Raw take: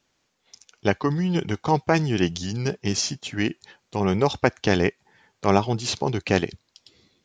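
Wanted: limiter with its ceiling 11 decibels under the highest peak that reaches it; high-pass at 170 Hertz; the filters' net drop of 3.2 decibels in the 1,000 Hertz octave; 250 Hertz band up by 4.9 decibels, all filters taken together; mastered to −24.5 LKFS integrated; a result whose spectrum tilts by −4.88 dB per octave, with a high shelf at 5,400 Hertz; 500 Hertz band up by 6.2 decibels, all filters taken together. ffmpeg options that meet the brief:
ffmpeg -i in.wav -af "highpass=170,equalizer=frequency=250:width_type=o:gain=6.5,equalizer=frequency=500:width_type=o:gain=7.5,equalizer=frequency=1000:width_type=o:gain=-8.5,highshelf=frequency=5400:gain=4.5,alimiter=limit=-12dB:level=0:latency=1" out.wav

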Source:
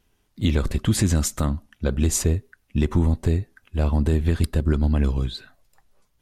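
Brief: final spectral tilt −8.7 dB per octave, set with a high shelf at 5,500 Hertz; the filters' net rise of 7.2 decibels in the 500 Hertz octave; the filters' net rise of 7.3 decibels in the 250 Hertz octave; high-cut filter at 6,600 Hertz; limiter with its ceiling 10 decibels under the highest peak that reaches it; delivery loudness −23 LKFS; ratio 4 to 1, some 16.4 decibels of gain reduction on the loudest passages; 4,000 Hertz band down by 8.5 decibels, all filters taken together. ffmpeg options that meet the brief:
ffmpeg -i in.wav -af "lowpass=6600,equalizer=frequency=250:width_type=o:gain=7.5,equalizer=frequency=500:width_type=o:gain=6.5,equalizer=frequency=4000:width_type=o:gain=-7.5,highshelf=frequency=5500:gain=-6.5,acompressor=threshold=-32dB:ratio=4,volume=16dB,alimiter=limit=-12dB:level=0:latency=1" out.wav

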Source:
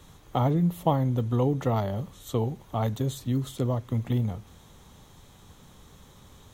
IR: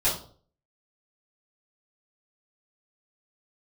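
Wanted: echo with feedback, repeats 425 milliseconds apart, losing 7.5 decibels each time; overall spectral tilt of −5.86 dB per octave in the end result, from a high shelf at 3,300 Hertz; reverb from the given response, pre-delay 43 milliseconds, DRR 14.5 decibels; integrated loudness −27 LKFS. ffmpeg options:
-filter_complex "[0:a]highshelf=frequency=3300:gain=-7.5,aecho=1:1:425|850|1275|1700|2125:0.422|0.177|0.0744|0.0312|0.0131,asplit=2[link_01][link_02];[1:a]atrim=start_sample=2205,adelay=43[link_03];[link_02][link_03]afir=irnorm=-1:irlink=0,volume=-26dB[link_04];[link_01][link_04]amix=inputs=2:normalize=0,volume=0.5dB"

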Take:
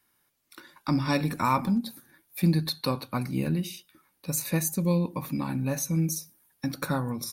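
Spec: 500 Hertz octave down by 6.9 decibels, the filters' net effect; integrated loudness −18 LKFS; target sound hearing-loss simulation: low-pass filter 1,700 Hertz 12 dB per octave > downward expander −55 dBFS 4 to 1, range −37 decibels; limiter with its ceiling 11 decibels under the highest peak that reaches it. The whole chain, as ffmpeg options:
ffmpeg -i in.wav -af "equalizer=frequency=500:width_type=o:gain=-8.5,alimiter=level_in=0.5dB:limit=-24dB:level=0:latency=1,volume=-0.5dB,lowpass=1700,agate=range=-37dB:threshold=-55dB:ratio=4,volume=17dB" out.wav

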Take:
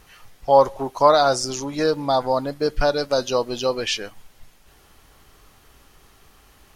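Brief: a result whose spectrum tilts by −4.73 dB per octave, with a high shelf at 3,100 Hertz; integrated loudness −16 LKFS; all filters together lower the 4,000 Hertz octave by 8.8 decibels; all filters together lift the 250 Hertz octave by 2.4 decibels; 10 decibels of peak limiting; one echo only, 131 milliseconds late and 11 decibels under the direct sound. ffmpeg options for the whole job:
ffmpeg -i in.wav -af "equalizer=frequency=250:width_type=o:gain=3,highshelf=frequency=3100:gain=-8.5,equalizer=frequency=4000:width_type=o:gain=-4.5,alimiter=limit=-13dB:level=0:latency=1,aecho=1:1:131:0.282,volume=8.5dB" out.wav

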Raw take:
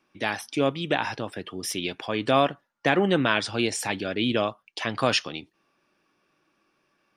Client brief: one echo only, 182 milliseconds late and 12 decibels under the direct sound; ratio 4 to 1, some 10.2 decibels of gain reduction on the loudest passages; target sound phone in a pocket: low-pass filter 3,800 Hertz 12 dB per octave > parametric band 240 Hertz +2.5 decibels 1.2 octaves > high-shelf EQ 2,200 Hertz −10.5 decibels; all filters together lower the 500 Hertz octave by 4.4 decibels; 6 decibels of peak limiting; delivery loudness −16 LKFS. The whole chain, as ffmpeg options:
ffmpeg -i in.wav -af "equalizer=frequency=500:width_type=o:gain=-6,acompressor=threshold=-31dB:ratio=4,alimiter=limit=-22dB:level=0:latency=1,lowpass=3800,equalizer=frequency=240:width_type=o:width=1.2:gain=2.5,highshelf=frequency=2200:gain=-10.5,aecho=1:1:182:0.251,volume=21.5dB" out.wav

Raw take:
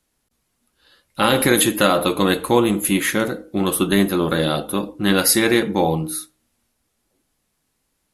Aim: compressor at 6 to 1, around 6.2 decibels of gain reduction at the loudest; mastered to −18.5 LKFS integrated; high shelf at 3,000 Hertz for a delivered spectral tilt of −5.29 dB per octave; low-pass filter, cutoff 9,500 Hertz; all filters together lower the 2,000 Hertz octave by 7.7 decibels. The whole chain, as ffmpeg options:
ffmpeg -i in.wav -af "lowpass=9500,equalizer=frequency=2000:width_type=o:gain=-8,highshelf=frequency=3000:gain=-6.5,acompressor=threshold=-19dB:ratio=6,volume=6.5dB" out.wav

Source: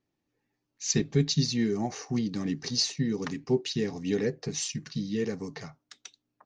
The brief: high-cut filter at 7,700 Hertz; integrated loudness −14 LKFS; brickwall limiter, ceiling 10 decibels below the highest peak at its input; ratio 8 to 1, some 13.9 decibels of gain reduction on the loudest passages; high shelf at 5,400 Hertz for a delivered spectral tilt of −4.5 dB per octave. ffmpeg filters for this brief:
ffmpeg -i in.wav -af "lowpass=7700,highshelf=frequency=5400:gain=-6.5,acompressor=threshold=-34dB:ratio=8,volume=27.5dB,alimiter=limit=-4dB:level=0:latency=1" out.wav

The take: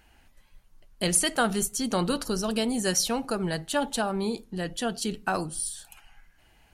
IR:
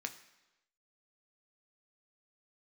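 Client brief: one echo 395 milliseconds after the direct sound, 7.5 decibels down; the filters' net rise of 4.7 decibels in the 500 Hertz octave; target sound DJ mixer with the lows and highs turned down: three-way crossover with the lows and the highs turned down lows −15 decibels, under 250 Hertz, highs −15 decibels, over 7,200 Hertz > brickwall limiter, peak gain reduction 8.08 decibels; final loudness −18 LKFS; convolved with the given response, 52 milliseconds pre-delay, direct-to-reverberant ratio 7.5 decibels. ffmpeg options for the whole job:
-filter_complex "[0:a]equalizer=frequency=500:width_type=o:gain=6.5,aecho=1:1:395:0.422,asplit=2[link_01][link_02];[1:a]atrim=start_sample=2205,adelay=52[link_03];[link_02][link_03]afir=irnorm=-1:irlink=0,volume=-7dB[link_04];[link_01][link_04]amix=inputs=2:normalize=0,acrossover=split=250 7200:gain=0.178 1 0.178[link_05][link_06][link_07];[link_05][link_06][link_07]amix=inputs=3:normalize=0,volume=10.5dB,alimiter=limit=-7dB:level=0:latency=1"

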